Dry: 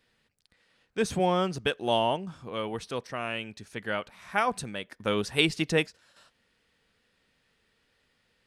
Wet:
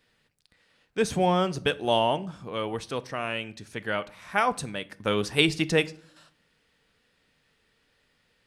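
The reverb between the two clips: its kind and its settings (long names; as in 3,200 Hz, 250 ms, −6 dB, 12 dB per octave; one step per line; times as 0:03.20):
rectangular room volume 610 cubic metres, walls furnished, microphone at 0.4 metres
level +2 dB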